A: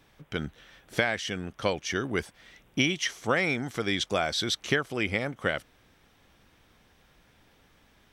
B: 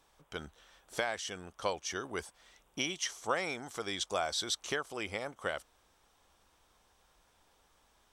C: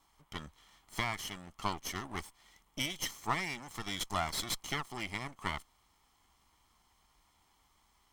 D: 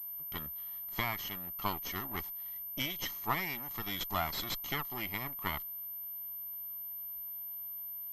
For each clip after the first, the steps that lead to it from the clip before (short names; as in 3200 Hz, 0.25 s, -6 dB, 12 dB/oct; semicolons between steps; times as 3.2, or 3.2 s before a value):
graphic EQ 125/250/1000/2000/8000 Hz -10/-6/+6/-6/+8 dB; gain -6.5 dB
minimum comb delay 0.96 ms
pulse-width modulation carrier 13000 Hz